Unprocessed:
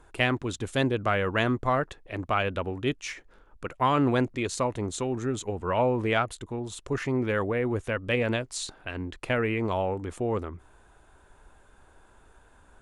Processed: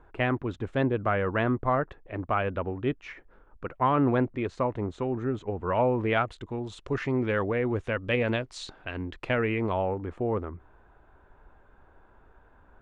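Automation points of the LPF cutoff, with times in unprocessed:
5.49 s 1800 Hz
6.59 s 4000 Hz
9.49 s 4000 Hz
9.98 s 1800 Hz

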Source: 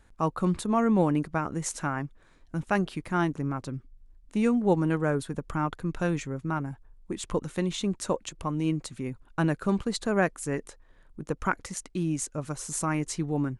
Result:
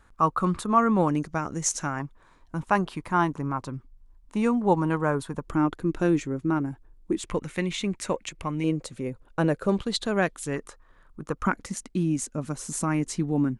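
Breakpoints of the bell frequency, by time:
bell +10.5 dB 0.62 oct
1200 Hz
from 1.08 s 6200 Hz
from 2 s 1000 Hz
from 5.47 s 320 Hz
from 7.27 s 2200 Hz
from 8.64 s 510 Hz
from 9.79 s 3500 Hz
from 10.56 s 1200 Hz
from 11.46 s 230 Hz

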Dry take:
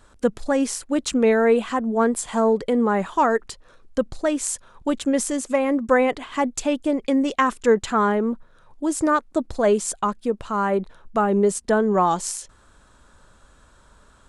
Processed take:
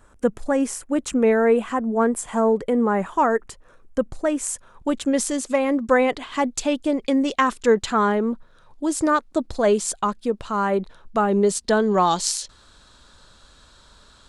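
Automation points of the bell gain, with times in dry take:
bell 4200 Hz 0.95 oct
4.17 s -9 dB
4.92 s -2.5 dB
5.19 s +4.5 dB
11.21 s +4.5 dB
11.85 s +14.5 dB

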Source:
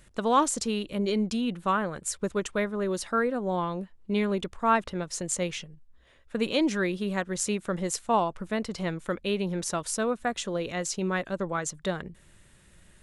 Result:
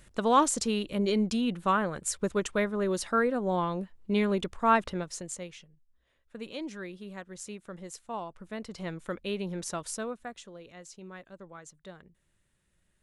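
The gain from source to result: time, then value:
4.92 s 0 dB
5.51 s -13 dB
8.14 s -13 dB
8.98 s -5 dB
9.89 s -5 dB
10.56 s -17 dB

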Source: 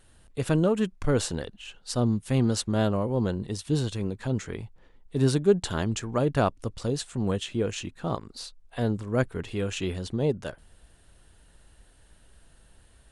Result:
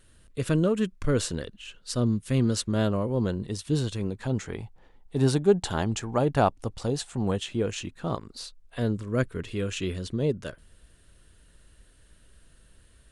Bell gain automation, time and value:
bell 800 Hz 0.38 oct
2.49 s -12 dB
2.91 s -5 dB
3.8 s -5 dB
4.64 s +7 dB
7.16 s +7 dB
7.77 s -2.5 dB
8.3 s -2.5 dB
9.11 s -12.5 dB

